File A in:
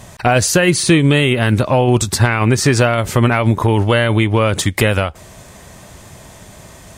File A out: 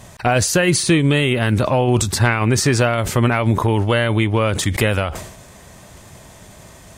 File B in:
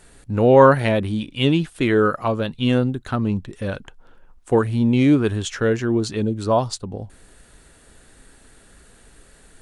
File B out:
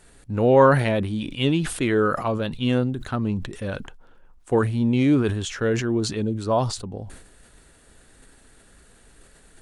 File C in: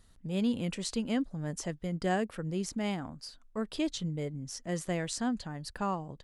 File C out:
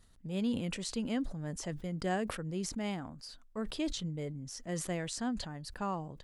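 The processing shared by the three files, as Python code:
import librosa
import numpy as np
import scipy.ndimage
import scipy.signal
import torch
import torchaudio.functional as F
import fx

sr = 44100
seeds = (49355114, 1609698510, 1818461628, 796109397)

y = fx.sustainer(x, sr, db_per_s=68.0)
y = F.gain(torch.from_numpy(y), -3.5).numpy()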